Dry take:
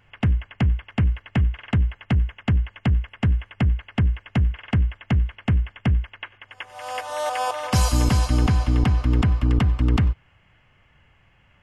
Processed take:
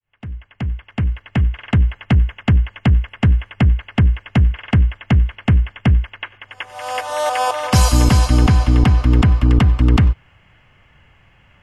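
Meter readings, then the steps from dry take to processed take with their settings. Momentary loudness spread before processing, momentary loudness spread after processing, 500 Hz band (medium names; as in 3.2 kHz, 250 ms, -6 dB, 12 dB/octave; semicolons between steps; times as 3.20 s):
7 LU, 14 LU, +6.5 dB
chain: fade-in on the opening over 1.92 s; trim +6.5 dB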